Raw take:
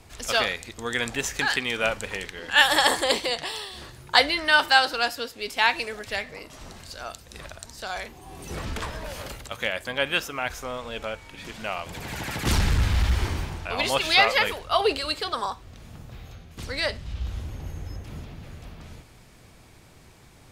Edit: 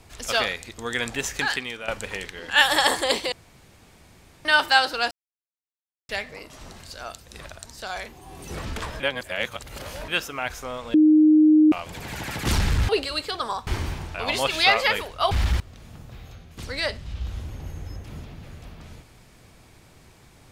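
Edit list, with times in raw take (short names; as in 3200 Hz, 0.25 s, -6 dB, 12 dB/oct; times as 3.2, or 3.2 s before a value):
1.45–1.88 fade out, to -14.5 dB
3.32–4.45 room tone
5.11–6.09 mute
9–10.08 reverse
10.94–11.72 bleep 308 Hz -11.5 dBFS
12.89–13.18 swap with 14.82–15.6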